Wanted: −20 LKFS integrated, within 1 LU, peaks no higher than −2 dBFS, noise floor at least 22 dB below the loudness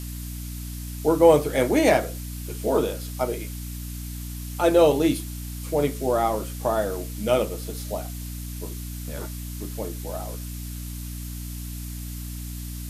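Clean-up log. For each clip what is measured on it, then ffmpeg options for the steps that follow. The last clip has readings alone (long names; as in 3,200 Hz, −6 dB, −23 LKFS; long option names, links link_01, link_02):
mains hum 60 Hz; hum harmonics up to 300 Hz; level of the hum −32 dBFS; background noise floor −34 dBFS; target noise floor −48 dBFS; integrated loudness −26.0 LKFS; sample peak −3.5 dBFS; target loudness −20.0 LKFS
→ -af "bandreject=frequency=60:width_type=h:width=6,bandreject=frequency=120:width_type=h:width=6,bandreject=frequency=180:width_type=h:width=6,bandreject=frequency=240:width_type=h:width=6,bandreject=frequency=300:width_type=h:width=6"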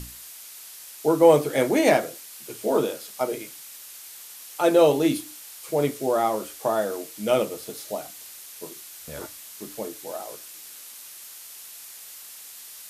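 mains hum none found; background noise floor −43 dBFS; target noise floor −46 dBFS
→ -af "afftdn=noise_reduction=6:noise_floor=-43"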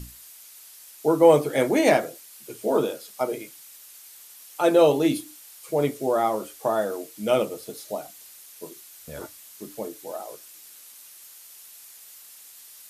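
background noise floor −48 dBFS; integrated loudness −23.5 LKFS; sample peak −4.5 dBFS; target loudness −20.0 LKFS
→ -af "volume=3.5dB,alimiter=limit=-2dB:level=0:latency=1"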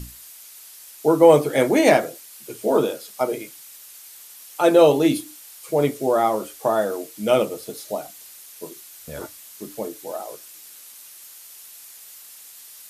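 integrated loudness −20.0 LKFS; sample peak −2.0 dBFS; background noise floor −44 dBFS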